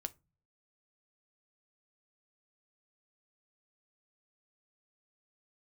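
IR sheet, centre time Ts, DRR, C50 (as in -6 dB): 2 ms, 10.0 dB, 24.0 dB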